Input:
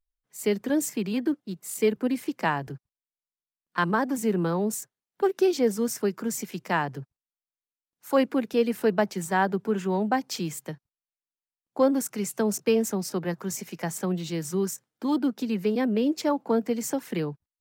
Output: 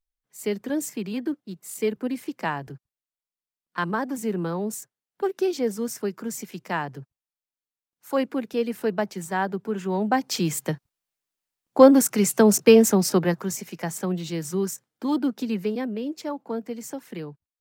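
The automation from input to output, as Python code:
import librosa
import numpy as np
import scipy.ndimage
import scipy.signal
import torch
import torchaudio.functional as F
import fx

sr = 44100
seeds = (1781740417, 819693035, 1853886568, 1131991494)

y = fx.gain(x, sr, db=fx.line((9.74, -2.0), (10.66, 9.0), (13.17, 9.0), (13.59, 1.0), (15.54, 1.0), (15.98, -6.0)))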